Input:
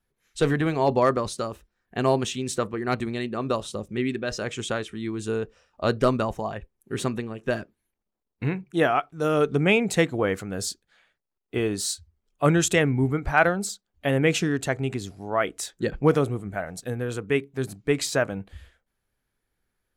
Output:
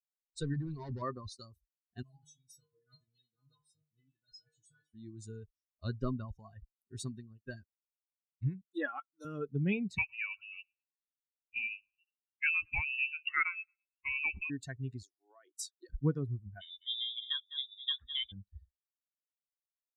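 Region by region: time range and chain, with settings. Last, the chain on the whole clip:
0.54–1.02 low shelf 340 Hz +5 dB + hard clip -22 dBFS
2.02–4.94 low shelf 360 Hz +11 dB + metallic resonator 150 Hz, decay 0.72 s, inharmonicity 0.008
8.61–9.25 HPF 350 Hz + comb 3.6 ms, depth 81%
9.98–14.5 feedback echo 0.11 s, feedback 43%, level -19 dB + inverted band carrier 2800 Hz
15.02–15.9 elliptic high-pass 320 Hz + compressor 20:1, threshold -27 dBFS
16.61–18.32 echo 0.205 s -7.5 dB + inverted band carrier 3700 Hz
whole clip: per-bin expansion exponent 2; treble ducked by the level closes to 2200 Hz, closed at -25 dBFS; passive tone stack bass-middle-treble 6-0-2; gain +12 dB

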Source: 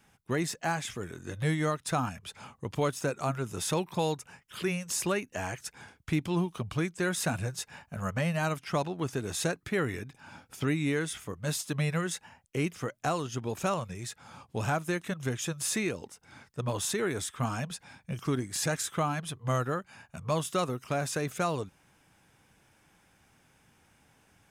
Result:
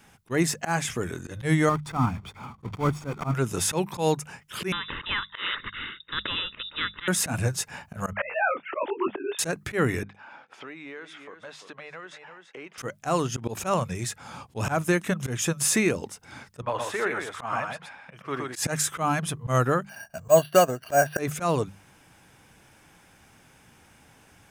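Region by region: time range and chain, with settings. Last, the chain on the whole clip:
1.69–3.34 block floating point 3-bit + LPF 1000 Hz 6 dB/oct + comb 0.9 ms, depth 51%
4.72–7.08 fixed phaser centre 2000 Hz, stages 8 + inverted band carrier 3700 Hz + spectral compressor 2:1
8.13–9.39 sine-wave speech + detuned doubles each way 44 cents
10.03–12.78 BPF 510–2400 Hz + echo 0.338 s -16 dB + compressor 2.5:1, threshold -52 dBFS
16.62–18.56 three-band isolator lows -17 dB, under 500 Hz, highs -19 dB, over 2900 Hz + echo 0.119 s -4 dB
19.89–21.19 small resonant body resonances 650/1600/2800 Hz, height 16 dB, ringing for 25 ms + careless resampling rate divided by 6×, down filtered, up hold + upward expander, over -34 dBFS
whole clip: notches 50/100/150/200 Hz; dynamic EQ 3800 Hz, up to -5 dB, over -52 dBFS, Q 2.1; auto swell 0.106 s; gain +8.5 dB

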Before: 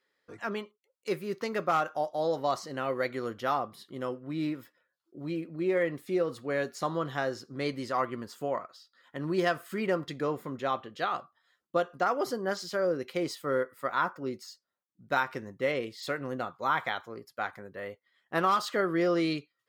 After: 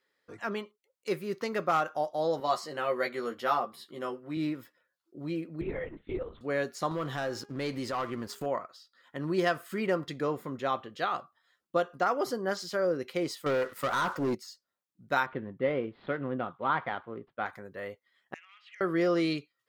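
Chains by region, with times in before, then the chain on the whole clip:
2.4–4.37 HPF 310 Hz 6 dB/oct + notch 6000 Hz, Q 10 + doubler 13 ms -3 dB
5.61–6.41 transient shaper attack +9 dB, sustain -5 dB + compressor 2:1, threshold -40 dBFS + LPC vocoder at 8 kHz whisper
6.91–8.46 sample leveller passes 2 + de-hum 409.7 Hz, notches 8 + compressor 2:1, threshold -36 dBFS
13.46–14.35 compressor 3:1, threshold -31 dBFS + sample leveller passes 3
15.26–17.46 median filter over 15 samples + Chebyshev low-pass 3300 Hz, order 4 + bell 200 Hz +4.5 dB 2.1 oct
18.34–18.81 compressor 3:1, threshold -33 dBFS + Butterworth band-pass 2400 Hz, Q 3.1 + core saturation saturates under 2600 Hz
whole clip: dry

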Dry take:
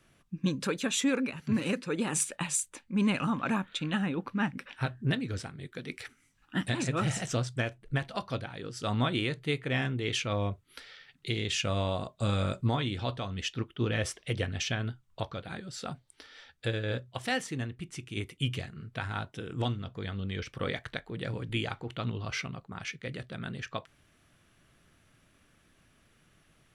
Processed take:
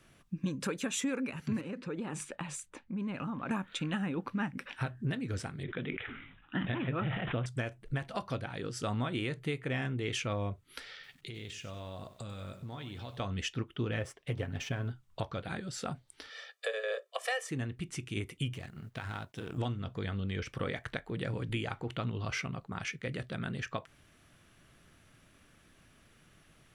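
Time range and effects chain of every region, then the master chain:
1.61–3.51 LPF 1400 Hz 6 dB/oct + compressor 3:1, threshold -38 dBFS
5.63–7.46 LPF 4900 Hz 24 dB/oct + careless resampling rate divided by 6×, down none, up filtered + sustainer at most 61 dB/s
10.94–13.2 compressor 8:1, threshold -43 dBFS + lo-fi delay 95 ms, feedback 35%, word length 10-bit, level -12.5 dB
13.99–14.91 G.711 law mismatch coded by A + high shelf 2400 Hz -10 dB + comb 7.3 ms, depth 34%
16.3–17.5 steep high-pass 410 Hz 72 dB/oct + comb 1.7 ms, depth 74%
18.53–19.58 G.711 law mismatch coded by A + compressor, threshold -37 dBFS
whole clip: dynamic EQ 4000 Hz, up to -6 dB, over -52 dBFS, Q 1.7; compressor 3:1, threshold -35 dBFS; gain +2.5 dB

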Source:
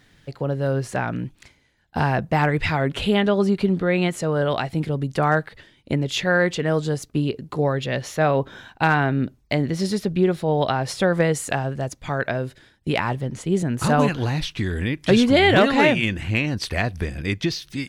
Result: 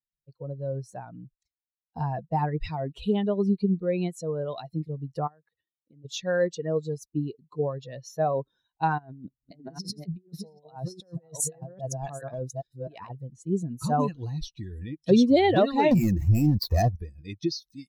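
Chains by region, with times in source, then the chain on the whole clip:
5.27–6.05 band shelf 5900 Hz -8 dB 1.1 oct + compressor, threshold -30 dBFS + HPF 85 Hz
8.98–13.1 reverse delay 0.404 s, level -3.5 dB + negative-ratio compressor -25 dBFS, ratio -0.5
15.91–16.96 median filter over 15 samples + sample leveller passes 3
whole clip: per-bin expansion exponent 2; band shelf 2000 Hz -10.5 dB

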